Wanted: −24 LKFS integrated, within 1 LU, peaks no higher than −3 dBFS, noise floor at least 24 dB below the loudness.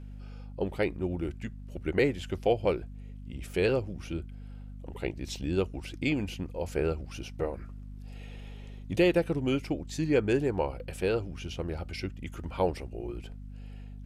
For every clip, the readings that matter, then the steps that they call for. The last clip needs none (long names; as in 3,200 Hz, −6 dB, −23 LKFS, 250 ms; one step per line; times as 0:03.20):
mains hum 50 Hz; hum harmonics up to 250 Hz; level of the hum −41 dBFS; integrated loudness −31.5 LKFS; sample peak −13.0 dBFS; target loudness −24.0 LKFS
→ mains-hum notches 50/100/150/200/250 Hz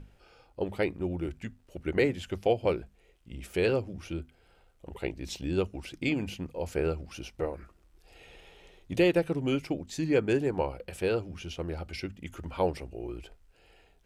mains hum none found; integrated loudness −31.5 LKFS; sample peak −13.5 dBFS; target loudness −24.0 LKFS
→ level +7.5 dB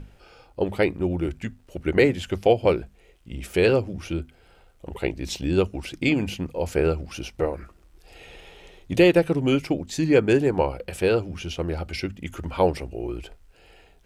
integrated loudness −24.0 LKFS; sample peak −6.0 dBFS; background noise floor −56 dBFS